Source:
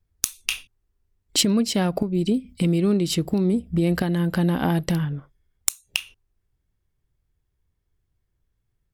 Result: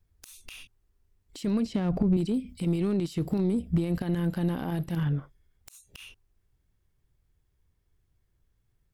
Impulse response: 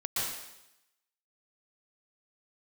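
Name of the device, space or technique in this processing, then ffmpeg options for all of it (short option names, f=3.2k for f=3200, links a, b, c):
de-esser from a sidechain: -filter_complex "[0:a]asettb=1/sr,asplit=3[a][b][c];[a]atrim=end=1.654[d];[b]atrim=start=1.65:end=2.17,asetpts=PTS-STARTPTS,afade=t=in:d=0.004:c=qsin,afade=t=out:st=0.516:d=0.004:c=qsin,aemphasis=mode=reproduction:type=bsi[e];[c]atrim=start=2.166[f];[d][e]acrossfade=d=0.004:c1=hsin:c2=qsin[g];[g][f]acrossfade=d=0.004:c1=qsin:c2=hsin,asplit=2[h][i];[i]highpass=f=4.5k:p=1,apad=whole_len=393874[j];[h][j]sidechaincompress=threshold=-47dB:ratio=6:attack=0.55:release=29,volume=2dB"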